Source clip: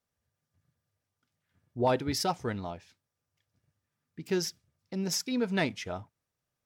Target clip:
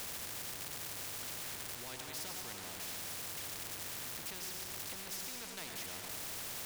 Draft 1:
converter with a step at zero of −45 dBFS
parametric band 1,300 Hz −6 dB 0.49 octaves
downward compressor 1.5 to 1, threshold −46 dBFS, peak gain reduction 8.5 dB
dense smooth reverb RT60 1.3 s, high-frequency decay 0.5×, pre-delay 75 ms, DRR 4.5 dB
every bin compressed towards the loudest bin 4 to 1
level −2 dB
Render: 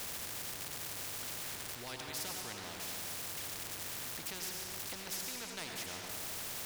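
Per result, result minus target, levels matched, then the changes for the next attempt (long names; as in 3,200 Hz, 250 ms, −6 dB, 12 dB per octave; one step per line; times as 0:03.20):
converter with a step at zero: distortion −9 dB; downward compressor: peak gain reduction −3 dB
change: converter with a step at zero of −35 dBFS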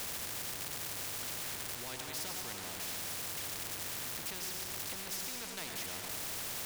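downward compressor: peak gain reduction −3 dB
change: downward compressor 1.5 to 1, threshold −55 dBFS, peak gain reduction 12 dB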